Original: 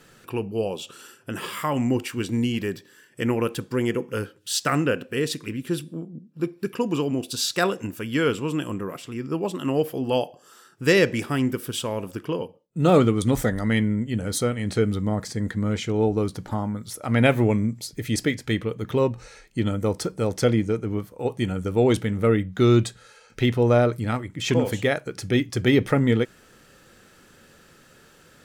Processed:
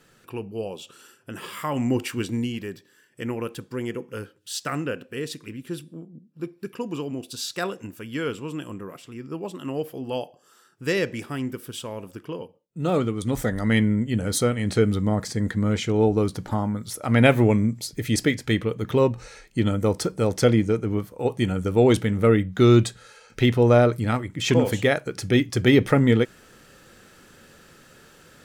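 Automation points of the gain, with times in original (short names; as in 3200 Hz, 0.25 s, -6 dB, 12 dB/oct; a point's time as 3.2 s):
1.41 s -5 dB
2.1 s +1.5 dB
2.62 s -6 dB
13.16 s -6 dB
13.75 s +2 dB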